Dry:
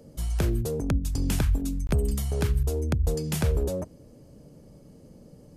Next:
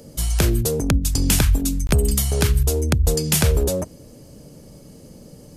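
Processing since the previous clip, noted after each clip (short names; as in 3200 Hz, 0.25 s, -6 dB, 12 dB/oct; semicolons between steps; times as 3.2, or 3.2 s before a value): high shelf 2100 Hz +9.5 dB; gain +6.5 dB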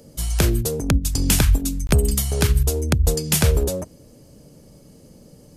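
upward expander 1.5:1, over -24 dBFS; gain +1.5 dB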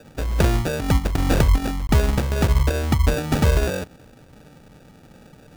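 sample-and-hold 42×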